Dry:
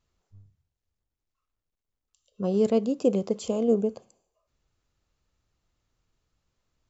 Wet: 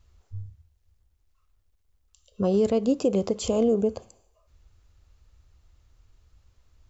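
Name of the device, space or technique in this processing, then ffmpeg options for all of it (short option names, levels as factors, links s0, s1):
car stereo with a boomy subwoofer: -af "lowshelf=f=110:t=q:w=1.5:g=10.5,alimiter=limit=0.0841:level=0:latency=1:release=166,volume=2.51"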